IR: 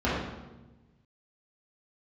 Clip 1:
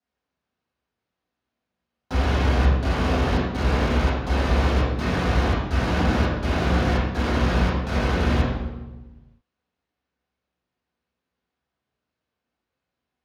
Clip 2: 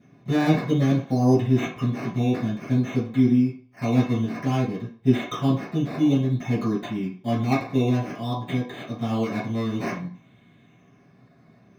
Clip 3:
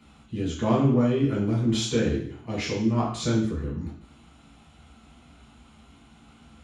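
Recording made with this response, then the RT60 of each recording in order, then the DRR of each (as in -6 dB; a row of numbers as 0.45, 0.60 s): 1; 1.1, 0.45, 0.60 s; -9.5, -12.0, -5.0 dB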